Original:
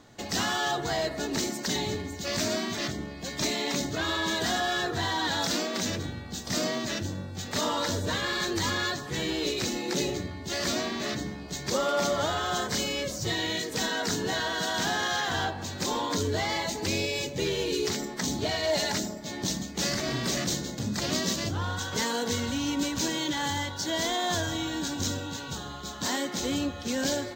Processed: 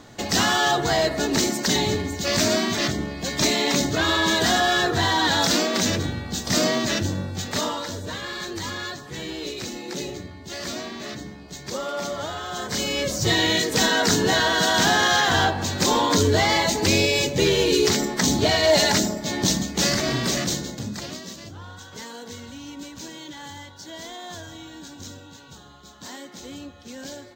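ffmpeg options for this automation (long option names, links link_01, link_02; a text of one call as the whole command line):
ffmpeg -i in.wav -af "volume=20dB,afade=type=out:start_time=7.28:duration=0.55:silence=0.298538,afade=type=in:start_time=12.54:duration=0.8:silence=0.251189,afade=type=out:start_time=19.36:duration=1.34:silence=0.446684,afade=type=out:start_time=20.7:duration=0.49:silence=0.266073" out.wav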